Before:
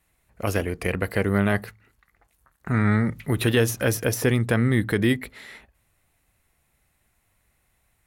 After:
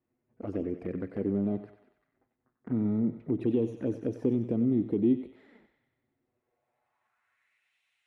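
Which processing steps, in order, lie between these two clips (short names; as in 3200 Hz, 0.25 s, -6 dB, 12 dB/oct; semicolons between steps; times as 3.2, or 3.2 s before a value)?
LPF 10000 Hz; in parallel at -1 dB: compressor 6:1, threshold -30 dBFS, peak gain reduction 14 dB; on the sum: soft clip -10.5 dBFS, distortion -18 dB; band-pass sweep 290 Hz -> 2900 Hz, 6.16–7.71; envelope flanger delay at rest 8.3 ms, full sweep at -26 dBFS; on a send: thinning echo 94 ms, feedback 65%, high-pass 650 Hz, level -9 dB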